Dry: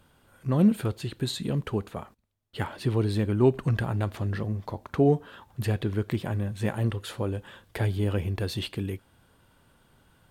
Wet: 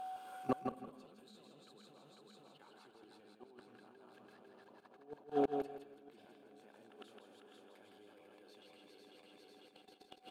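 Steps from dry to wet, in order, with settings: backward echo that repeats 249 ms, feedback 74%, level -3.5 dB; Bessel high-pass 380 Hz, order 4; treble shelf 8.9 kHz -6.5 dB; band-stop 1.9 kHz, Q 5.6; reverse; compression 16:1, threshold -36 dBFS, peak gain reduction 19 dB; reverse; whistle 750 Hz -46 dBFS; level held to a coarse grid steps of 15 dB; inverted gate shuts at -37 dBFS, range -32 dB; feedback delay 162 ms, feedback 21%, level -5.5 dB; on a send at -17 dB: reverberation RT60 0.75 s, pre-delay 163 ms; on the sum: trim +15 dB

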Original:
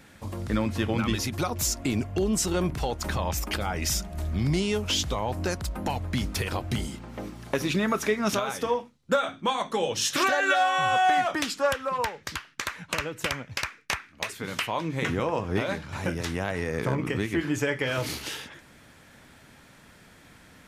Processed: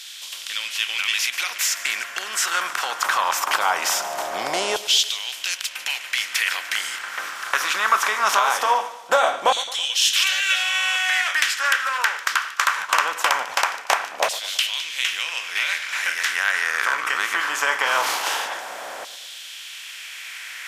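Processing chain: spectral levelling over time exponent 0.6; LFO high-pass saw down 0.21 Hz 640–3700 Hz; two-band feedback delay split 2.7 kHz, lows 109 ms, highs 148 ms, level -16 dB; trim +2 dB

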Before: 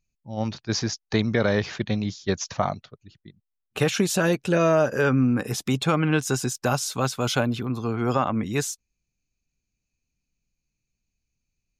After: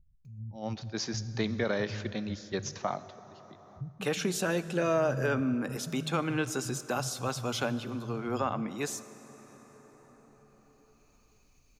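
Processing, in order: bands offset in time lows, highs 250 ms, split 150 Hz; plate-style reverb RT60 3.2 s, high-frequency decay 0.65×, DRR 13.5 dB; upward compressor, threshold -37 dBFS; trim -7.5 dB

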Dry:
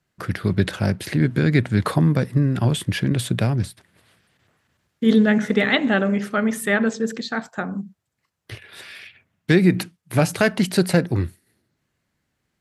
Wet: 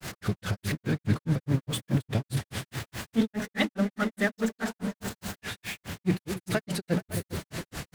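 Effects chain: jump at every zero crossing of -20 dBFS; time stretch by phase-locked vocoder 0.63×; on a send: delay with an opening low-pass 137 ms, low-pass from 200 Hz, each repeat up 2 oct, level -6 dB; on the sum: granulator 153 ms, grains 4.8 per s, spray 11 ms, pitch spread up and down by 0 st; trim -7 dB

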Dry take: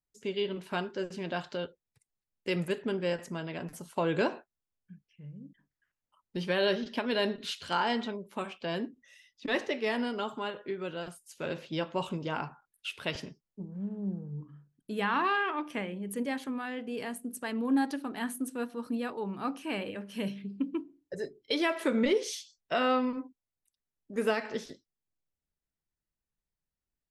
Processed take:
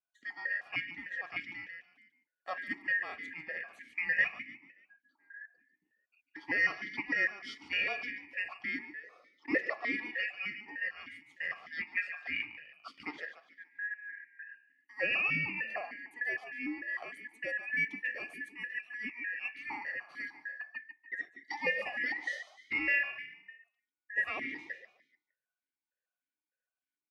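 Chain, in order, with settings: four frequency bands reordered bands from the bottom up 2143; on a send: frequency-shifting echo 145 ms, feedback 40%, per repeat +33 Hz, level -11 dB; on the sum: stepped vowel filter 6.6 Hz; trim +8.5 dB

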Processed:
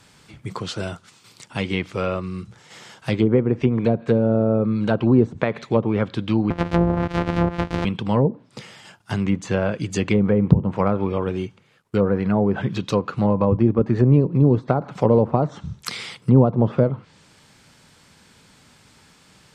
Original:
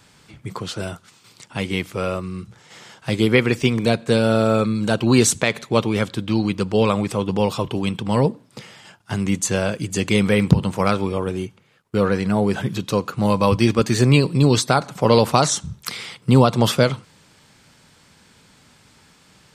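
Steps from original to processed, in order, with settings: 6.50–7.85 s: sorted samples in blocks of 256 samples; low-pass that closes with the level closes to 610 Hz, closed at -12.5 dBFS

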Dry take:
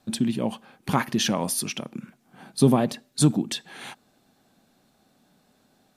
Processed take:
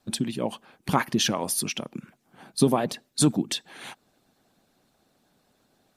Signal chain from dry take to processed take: harmonic-percussive split harmonic -11 dB; trim +1.5 dB

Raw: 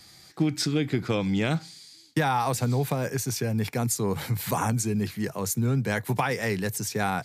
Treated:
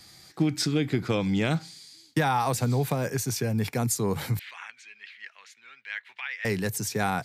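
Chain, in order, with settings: 4.39–6.45 s: Butterworth band-pass 2.4 kHz, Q 1.5

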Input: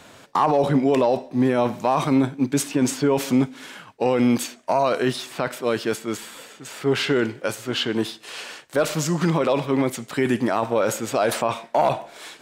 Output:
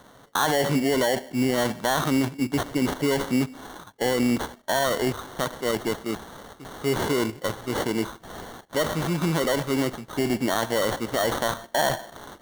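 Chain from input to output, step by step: in parallel at +3 dB: level held to a coarse grid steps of 15 dB; on the sum: sample-rate reducer 2.5 kHz, jitter 0%; trim -6.5 dB

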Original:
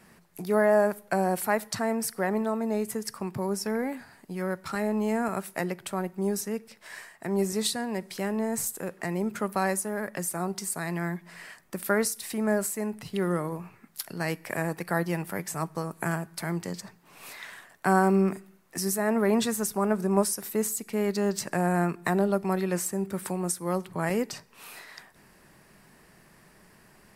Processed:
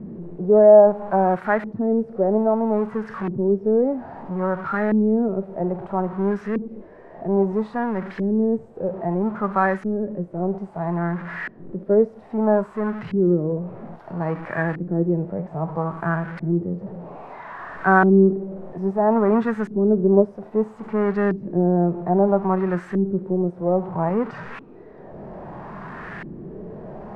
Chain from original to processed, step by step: jump at every zero crossing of -31.5 dBFS; harmonic-percussive split harmonic +9 dB; LFO low-pass saw up 0.61 Hz 290–1800 Hz; trim -5 dB

